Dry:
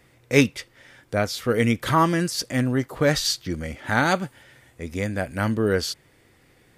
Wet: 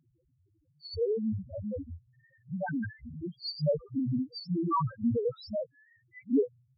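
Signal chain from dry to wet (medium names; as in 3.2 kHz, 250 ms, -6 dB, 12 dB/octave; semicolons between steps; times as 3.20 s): reverse the whole clip; pre-echo 33 ms -13 dB; loudest bins only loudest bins 1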